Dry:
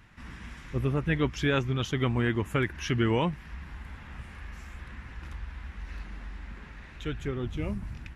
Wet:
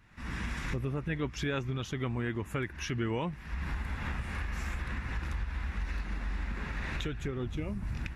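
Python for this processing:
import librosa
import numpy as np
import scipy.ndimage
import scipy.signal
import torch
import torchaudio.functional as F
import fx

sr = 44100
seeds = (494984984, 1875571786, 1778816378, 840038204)

y = fx.recorder_agc(x, sr, target_db=-20.0, rise_db_per_s=44.0, max_gain_db=30)
y = fx.notch(y, sr, hz=3100.0, q=16.0)
y = y * 10.0 ** (-7.0 / 20.0)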